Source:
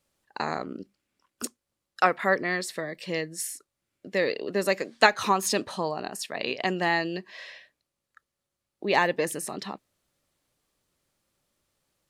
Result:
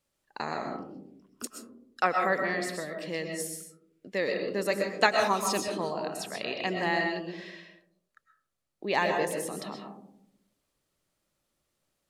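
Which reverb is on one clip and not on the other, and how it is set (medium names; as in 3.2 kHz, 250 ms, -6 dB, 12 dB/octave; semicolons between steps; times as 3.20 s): algorithmic reverb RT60 0.71 s, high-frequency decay 0.25×, pre-delay 85 ms, DRR 3 dB; trim -4.5 dB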